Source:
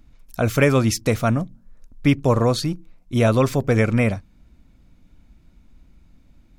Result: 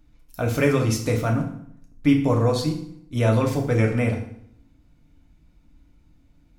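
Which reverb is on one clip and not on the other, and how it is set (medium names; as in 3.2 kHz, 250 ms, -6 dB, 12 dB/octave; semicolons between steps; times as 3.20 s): FDN reverb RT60 0.66 s, low-frequency decay 1.25×, high-frequency decay 0.85×, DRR 0.5 dB; trim -6.5 dB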